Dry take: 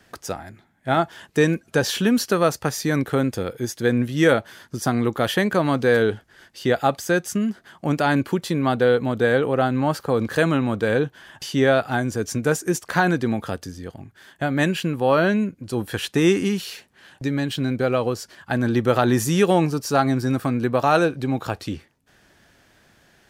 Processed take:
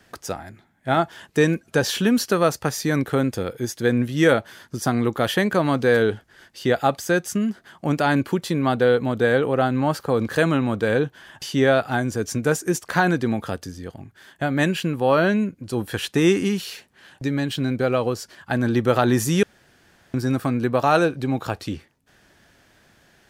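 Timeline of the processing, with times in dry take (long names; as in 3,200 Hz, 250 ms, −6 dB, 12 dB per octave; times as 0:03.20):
0:19.43–0:20.14: fill with room tone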